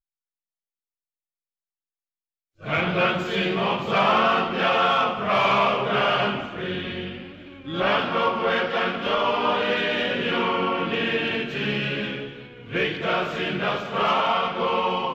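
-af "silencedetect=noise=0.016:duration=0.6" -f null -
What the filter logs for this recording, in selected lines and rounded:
silence_start: 0.00
silence_end: 2.63 | silence_duration: 2.63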